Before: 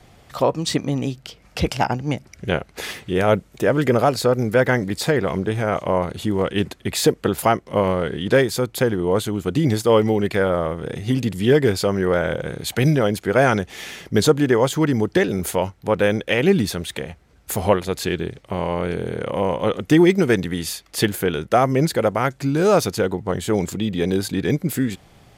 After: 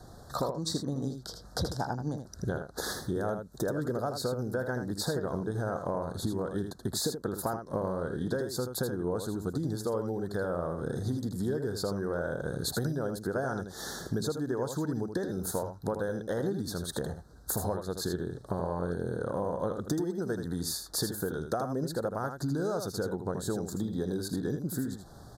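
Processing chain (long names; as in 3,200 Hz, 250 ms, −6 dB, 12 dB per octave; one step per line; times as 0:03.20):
Chebyshev band-stop filter 1,600–3,900 Hz, order 3
downward compressor 12 to 1, threshold −29 dBFS, peak gain reduction 19.5 dB
single-tap delay 80 ms −7.5 dB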